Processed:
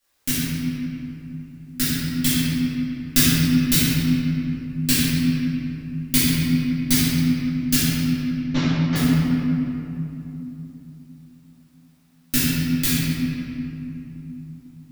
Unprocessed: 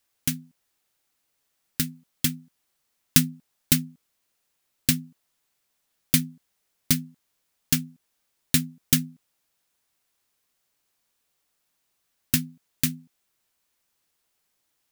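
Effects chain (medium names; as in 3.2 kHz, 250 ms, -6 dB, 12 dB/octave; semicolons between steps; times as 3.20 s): 7.77–8.96 s: CVSD coder 32 kbps; in parallel at -1 dB: peak limiter -13 dBFS, peak gain reduction 11.5 dB; on the sum: simulated room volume 150 m³, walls hard, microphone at 2.4 m; trim -8.5 dB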